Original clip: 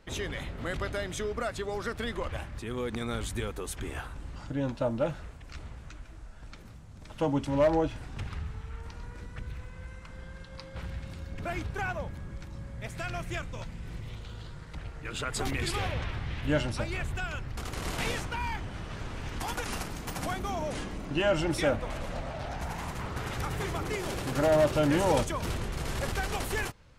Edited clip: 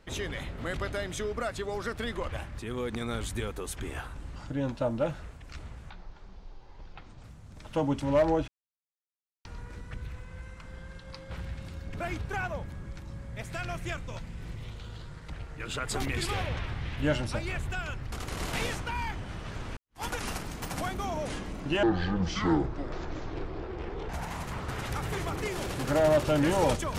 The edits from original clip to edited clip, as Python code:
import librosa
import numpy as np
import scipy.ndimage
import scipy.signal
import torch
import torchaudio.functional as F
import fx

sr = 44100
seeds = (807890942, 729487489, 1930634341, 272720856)

y = fx.edit(x, sr, fx.speed_span(start_s=5.9, length_s=0.79, speed=0.59),
    fx.silence(start_s=7.93, length_s=0.97),
    fx.fade_in_span(start_s=19.22, length_s=0.25, curve='exp'),
    fx.speed_span(start_s=21.28, length_s=1.29, speed=0.57), tone=tone)